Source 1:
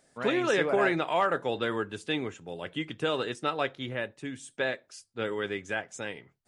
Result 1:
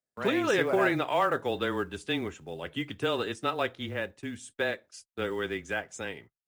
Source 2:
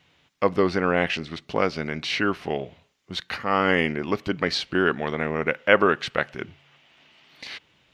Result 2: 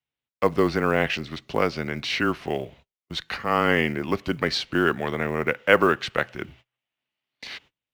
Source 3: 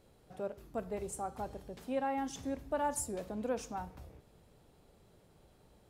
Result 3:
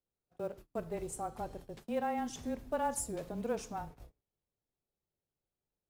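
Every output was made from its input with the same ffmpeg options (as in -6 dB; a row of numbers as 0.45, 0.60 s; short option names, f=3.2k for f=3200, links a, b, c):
-af "agate=range=-30dB:threshold=-49dB:ratio=16:detection=peak,acrusher=bits=8:mode=log:mix=0:aa=0.000001,afreqshift=-18"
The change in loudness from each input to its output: 0.0, 0.0, 0.0 LU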